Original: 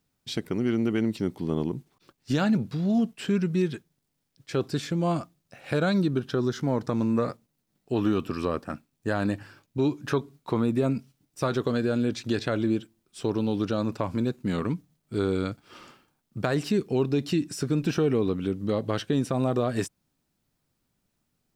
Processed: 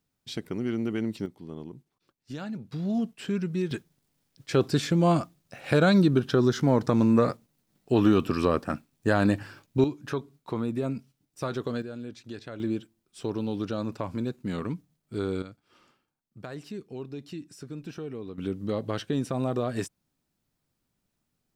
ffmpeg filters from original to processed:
-af "asetnsamples=n=441:p=0,asendcmd='1.26 volume volume -12.5dB;2.72 volume volume -4dB;3.71 volume volume 4dB;9.84 volume volume -5dB;11.82 volume volume -13dB;12.6 volume volume -4dB;15.42 volume volume -13.5dB;18.38 volume volume -3dB',volume=-4dB"

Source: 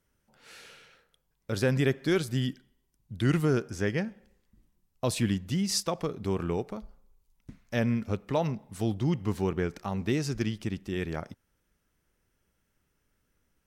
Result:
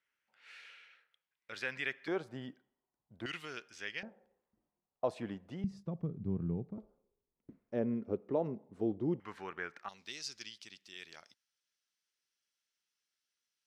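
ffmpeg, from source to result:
-af "asetnsamples=n=441:p=0,asendcmd='2.08 bandpass f 760;3.26 bandpass f 2900;4.03 bandpass f 690;5.64 bandpass f 150;6.78 bandpass f 390;9.2 bandpass f 1600;9.89 bandpass f 4500',bandpass=f=2.2k:t=q:w=1.8:csg=0"

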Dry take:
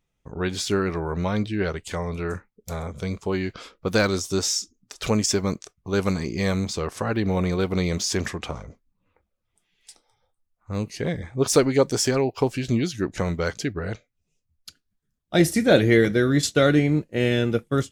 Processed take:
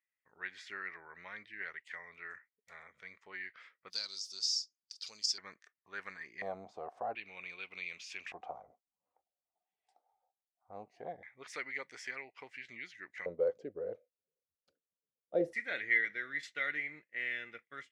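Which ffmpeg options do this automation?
-af "asetnsamples=n=441:p=0,asendcmd='3.9 bandpass f 4800;5.38 bandpass f 1800;6.42 bandpass f 720;7.15 bandpass f 2500;8.32 bandpass f 740;11.23 bandpass f 2000;13.26 bandpass f 510;15.53 bandpass f 2000',bandpass=f=1.9k:t=q:w=8.6:csg=0"

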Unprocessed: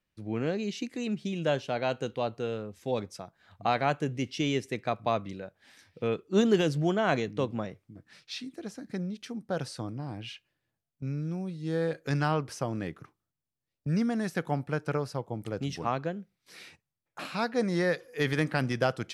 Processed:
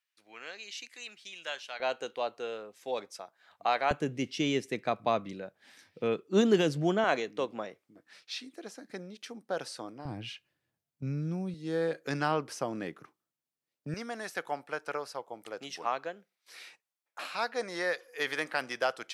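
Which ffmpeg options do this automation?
-af "asetnsamples=n=441:p=0,asendcmd='1.8 highpass f 520;3.91 highpass f 170;7.04 highpass f 390;10.05 highpass f 89;11.54 highpass f 240;13.94 highpass f 590',highpass=1.4k"

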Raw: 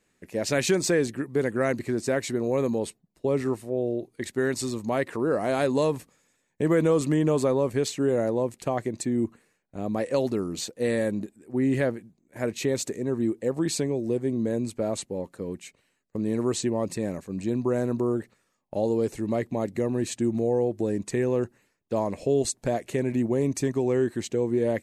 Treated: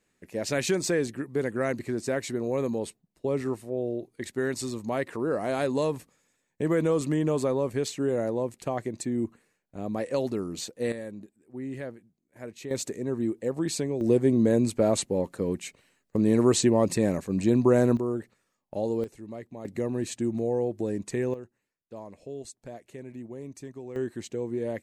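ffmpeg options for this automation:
-af "asetnsamples=n=441:p=0,asendcmd='10.92 volume volume -12dB;12.71 volume volume -2.5dB;14.01 volume volume 5dB;17.97 volume volume -3.5dB;19.04 volume volume -13dB;19.65 volume volume -3dB;21.34 volume volume -15.5dB;23.96 volume volume -6.5dB',volume=-3dB"

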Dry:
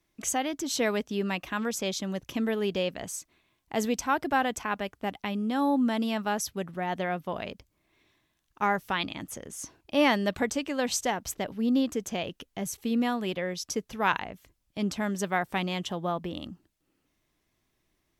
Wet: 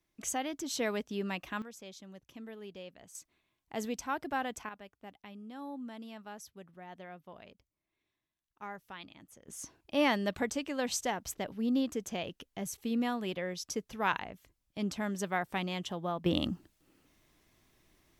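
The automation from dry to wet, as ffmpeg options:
-af "asetnsamples=n=441:p=0,asendcmd='1.62 volume volume -18dB;3.15 volume volume -8.5dB;4.69 volume volume -17.5dB;9.48 volume volume -5dB;16.26 volume volume 7dB',volume=-6dB"

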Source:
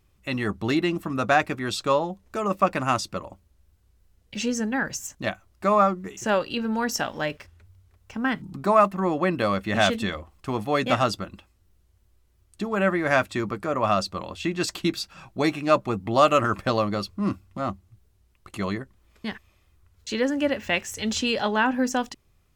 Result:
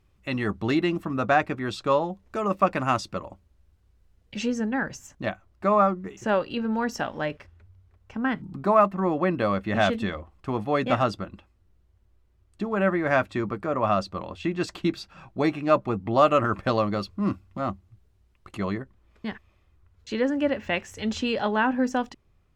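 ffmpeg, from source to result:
-af "asetnsamples=n=441:p=0,asendcmd='1.05 lowpass f 2100;1.92 lowpass f 3500;4.47 lowpass f 1900;16.63 lowpass f 3400;18.57 lowpass f 2000',lowpass=f=3.7k:p=1"

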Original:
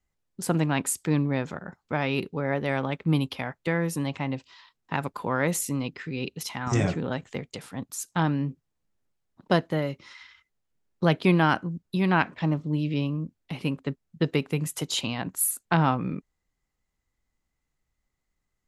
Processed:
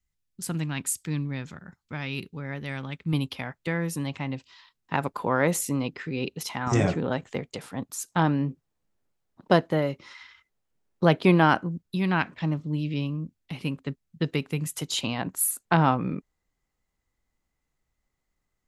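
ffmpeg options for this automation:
-af "asetnsamples=n=441:p=0,asendcmd='3.13 equalizer g -4;4.94 equalizer g 3.5;11.81 equalizer g -4.5;15.03 equalizer g 2.5',equalizer=f=610:t=o:w=2.5:g=-13.5"

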